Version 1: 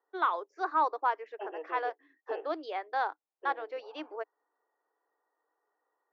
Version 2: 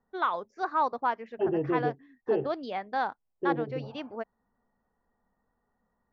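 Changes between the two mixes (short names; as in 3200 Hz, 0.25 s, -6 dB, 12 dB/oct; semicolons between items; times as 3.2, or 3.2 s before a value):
second voice: remove HPF 590 Hz 24 dB/oct; master: remove rippled Chebyshev high-pass 300 Hz, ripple 3 dB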